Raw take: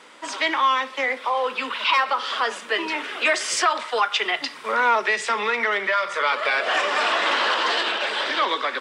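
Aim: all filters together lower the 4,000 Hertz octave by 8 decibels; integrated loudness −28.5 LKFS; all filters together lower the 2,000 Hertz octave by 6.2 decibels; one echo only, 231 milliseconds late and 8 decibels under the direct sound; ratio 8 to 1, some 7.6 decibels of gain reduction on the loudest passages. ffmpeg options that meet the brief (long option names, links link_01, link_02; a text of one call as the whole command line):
ffmpeg -i in.wav -af "equalizer=frequency=2000:width_type=o:gain=-6,equalizer=frequency=4000:width_type=o:gain=-8.5,acompressor=threshold=-25dB:ratio=8,aecho=1:1:231:0.398,volume=0.5dB" out.wav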